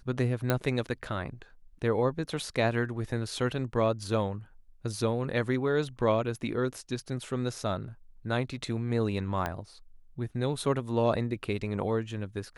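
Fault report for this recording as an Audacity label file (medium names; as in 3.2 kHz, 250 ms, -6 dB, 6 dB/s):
0.500000	0.500000	pop -12 dBFS
9.460000	9.460000	pop -17 dBFS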